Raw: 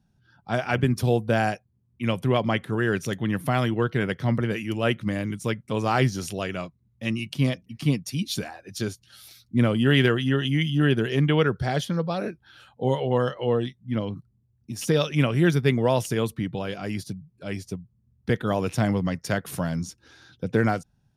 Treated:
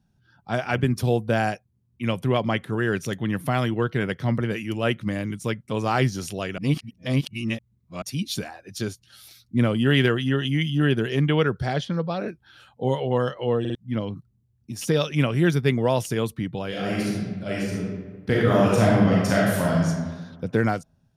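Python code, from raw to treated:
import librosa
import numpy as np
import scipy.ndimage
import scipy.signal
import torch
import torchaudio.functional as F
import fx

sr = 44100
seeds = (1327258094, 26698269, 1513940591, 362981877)

y = fx.lowpass(x, sr, hz=5100.0, slope=12, at=(11.73, 12.27), fade=0.02)
y = fx.reverb_throw(y, sr, start_s=16.68, length_s=3.19, rt60_s=1.4, drr_db=-5.5)
y = fx.edit(y, sr, fx.reverse_span(start_s=6.58, length_s=1.44),
    fx.stutter_over(start_s=13.6, slice_s=0.05, count=3), tone=tone)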